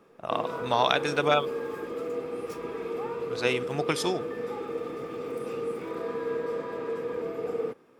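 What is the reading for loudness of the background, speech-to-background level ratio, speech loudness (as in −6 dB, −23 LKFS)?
−34.0 LKFS, 6.0 dB, −28.0 LKFS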